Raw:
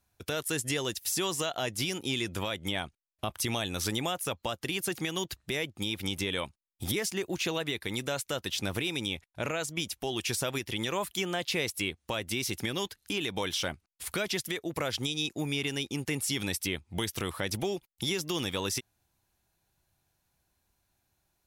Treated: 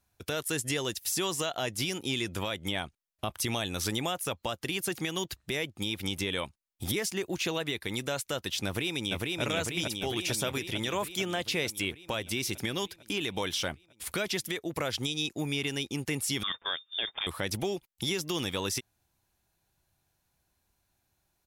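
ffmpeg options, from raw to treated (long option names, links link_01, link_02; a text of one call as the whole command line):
ffmpeg -i in.wav -filter_complex "[0:a]asplit=2[link_01][link_02];[link_02]afade=type=in:start_time=8.66:duration=0.01,afade=type=out:start_time=9.42:duration=0.01,aecho=0:1:450|900|1350|1800|2250|2700|3150|3600|4050|4500|4950|5400:0.841395|0.588977|0.412284|0.288599|0.202019|0.141413|0.0989893|0.0692925|0.0485048|0.0339533|0.0237673|0.0166371[link_03];[link_01][link_03]amix=inputs=2:normalize=0,asettb=1/sr,asplit=3[link_04][link_05][link_06];[link_04]atrim=end=16.434[link_07];[link_05]atrim=start=16.43:end=17.27,asetpts=PTS-STARTPTS,afade=type=in:duration=0.004:curve=qsin,afade=type=out:start_time=0.836:duration=0.004:curve=qsin,lowpass=frequency=3100:width_type=q:width=0.5098,lowpass=frequency=3100:width_type=q:width=0.6013,lowpass=frequency=3100:width_type=q:width=0.9,lowpass=frequency=3100:width_type=q:width=2.563,afreqshift=-3700[link_08];[link_06]atrim=start=17.266[link_09];[link_07][link_08]acrossfade=duration=0.004:curve1=hsin:curve2=qsin[link_10];[link_10][link_09]acrossfade=duration=0.004:curve1=qsin:curve2=hsin" out.wav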